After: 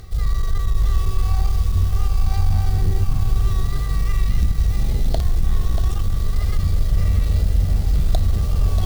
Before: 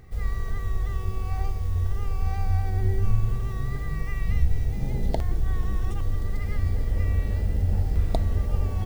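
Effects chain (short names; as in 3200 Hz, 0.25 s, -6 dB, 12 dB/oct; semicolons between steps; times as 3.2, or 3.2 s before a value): in parallel at -2.5 dB: limiter -17 dBFS, peak gain reduction 9 dB; on the sum: bell 920 Hz -14 dB 0.4 oct; reverse; upward compressor, threshold -19 dBFS; reverse; graphic EQ 125/250/500/1000/2000/4000 Hz -6/-8/-6/+5/-11/+6 dB; added harmonics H 2 -11 dB, 5 -13 dB, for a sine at -7.5 dBFS; lo-fi delay 0.636 s, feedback 35%, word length 6-bit, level -7.5 dB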